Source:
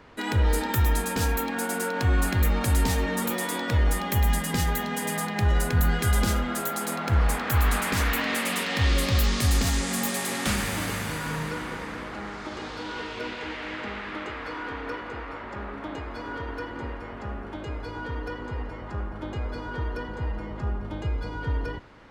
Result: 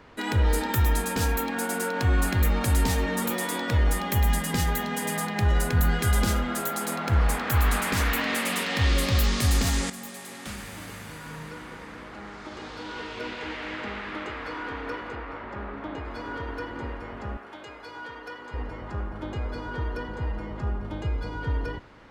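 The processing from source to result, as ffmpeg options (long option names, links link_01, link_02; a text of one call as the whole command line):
ffmpeg -i in.wav -filter_complex "[0:a]asettb=1/sr,asplit=3[link_01][link_02][link_03];[link_01]atrim=end=15.154[link_04];[link_02]atrim=start=15.15:end=16.05,asetpts=PTS-STARTPTS,afade=type=in:duration=0.004:curve=qsin,afade=type=out:start_time=0.896:duration=0.004:curve=qsin,lowpass=frequency=3400:poles=1[link_05];[link_03]atrim=start=16.046[link_06];[link_04][link_05]acrossfade=duration=0.004:curve1=hsin:curve2=qsin[link_07];[link_07][link_06]acrossfade=duration=0.004:curve1=qsin:curve2=hsin,asettb=1/sr,asplit=3[link_08][link_09][link_10];[link_08]atrim=end=17.374[link_11];[link_09]atrim=start=17.37:end=18.54,asetpts=PTS-STARTPTS,afade=type=in:duration=0.004:curve=qsin,afade=type=out:start_time=1.166:duration=0.004:curve=qsin,highpass=frequency=880:poles=1[link_12];[link_10]atrim=start=18.536[link_13];[link_11][link_12]acrossfade=duration=0.004:curve1=hsin:curve2=qsin[link_14];[link_14][link_13]acrossfade=duration=0.004:curve1=qsin:curve2=hsin,asplit=2[link_15][link_16];[link_15]atrim=end=9.9,asetpts=PTS-STARTPTS,afade=type=out:start_time=9.896:duration=0.004:curve=hsin:silence=0.251189[link_17];[link_16]atrim=start=9.9,asetpts=PTS-STARTPTS,afade=type=in:duration=3.61:curve=qua:silence=0.251189[link_18];[link_17][link_18]concat=n=2:v=0:a=1" out.wav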